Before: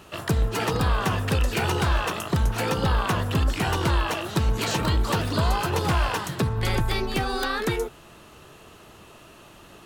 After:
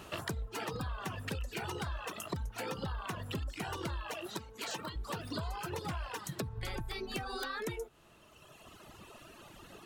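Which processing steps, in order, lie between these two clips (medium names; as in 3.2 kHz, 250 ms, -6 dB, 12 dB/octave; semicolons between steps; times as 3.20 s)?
reverb removal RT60 1.9 s; compression 10:1, threshold -34 dBFS, peak gain reduction 16 dB; 4.26–4.96 s: high-pass 330 Hz 6 dB/octave; trim -1.5 dB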